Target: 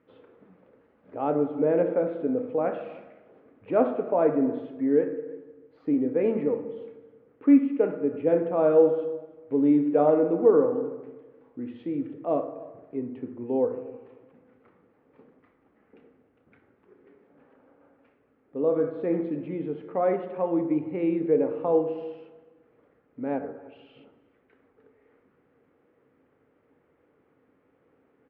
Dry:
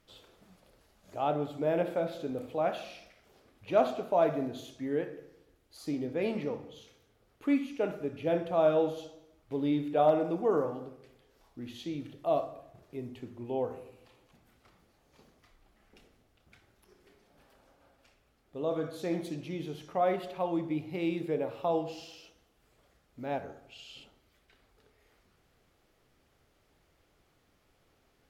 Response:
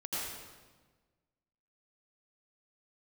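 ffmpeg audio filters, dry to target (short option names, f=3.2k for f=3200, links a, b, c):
-filter_complex "[0:a]highpass=130,equalizer=f=270:t=q:w=4:g=9,equalizer=f=470:t=q:w=4:g=9,equalizer=f=680:t=q:w=4:g=-4,lowpass=f=2.1k:w=0.5412,lowpass=f=2.1k:w=1.3066,asplit=2[a][b];[b]adelay=309,volume=-21dB,highshelf=f=4k:g=-6.95[c];[a][c]amix=inputs=2:normalize=0,asplit=2[d][e];[1:a]atrim=start_sample=2205,lowpass=f=1.9k:w=0.5412,lowpass=f=1.9k:w=1.3066[f];[e][f]afir=irnorm=-1:irlink=0,volume=-17.5dB[g];[d][g]amix=inputs=2:normalize=0,volume=2dB"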